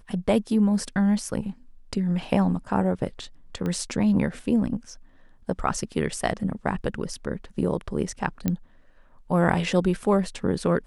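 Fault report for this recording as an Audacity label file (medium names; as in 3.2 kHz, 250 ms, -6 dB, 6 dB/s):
3.660000	3.660000	pop -18 dBFS
8.480000	8.480000	pop -11 dBFS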